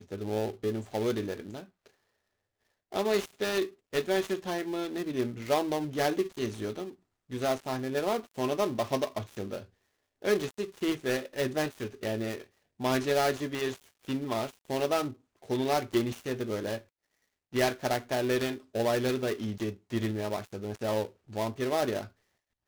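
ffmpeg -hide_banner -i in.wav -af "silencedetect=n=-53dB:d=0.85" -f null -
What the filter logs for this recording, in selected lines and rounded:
silence_start: 1.90
silence_end: 2.92 | silence_duration: 1.02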